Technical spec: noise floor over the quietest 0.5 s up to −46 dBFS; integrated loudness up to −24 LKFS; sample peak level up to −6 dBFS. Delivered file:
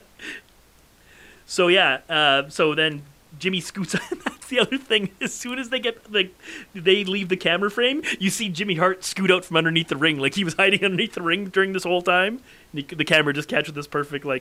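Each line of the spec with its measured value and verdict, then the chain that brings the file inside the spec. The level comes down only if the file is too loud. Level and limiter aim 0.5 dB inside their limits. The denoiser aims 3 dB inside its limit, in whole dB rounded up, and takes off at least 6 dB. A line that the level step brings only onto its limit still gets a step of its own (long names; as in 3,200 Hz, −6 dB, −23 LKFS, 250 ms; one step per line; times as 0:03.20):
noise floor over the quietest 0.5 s −54 dBFS: in spec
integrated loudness −21.5 LKFS: out of spec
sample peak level −5.0 dBFS: out of spec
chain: level −3 dB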